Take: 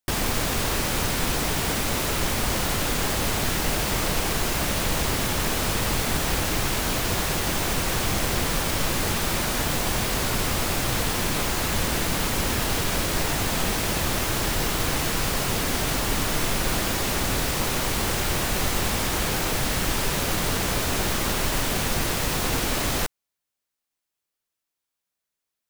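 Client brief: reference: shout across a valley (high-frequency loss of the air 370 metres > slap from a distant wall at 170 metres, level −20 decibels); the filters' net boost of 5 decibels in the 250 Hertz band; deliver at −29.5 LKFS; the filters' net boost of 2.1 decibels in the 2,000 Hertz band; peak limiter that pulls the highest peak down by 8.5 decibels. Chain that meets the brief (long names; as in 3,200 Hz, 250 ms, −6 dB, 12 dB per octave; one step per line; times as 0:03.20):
parametric band 250 Hz +7 dB
parametric band 2,000 Hz +7 dB
brickwall limiter −16.5 dBFS
high-frequency loss of the air 370 metres
slap from a distant wall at 170 metres, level −20 dB
level −0.5 dB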